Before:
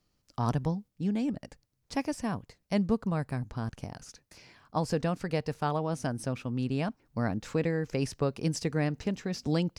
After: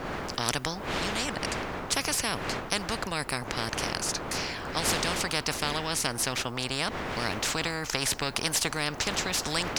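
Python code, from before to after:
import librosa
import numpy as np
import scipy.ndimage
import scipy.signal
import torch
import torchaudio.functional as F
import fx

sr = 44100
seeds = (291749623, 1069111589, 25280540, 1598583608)

y = fx.dmg_wind(x, sr, seeds[0], corner_hz=410.0, level_db=-39.0)
y = fx.spectral_comp(y, sr, ratio=4.0)
y = F.gain(torch.from_numpy(y), 4.0).numpy()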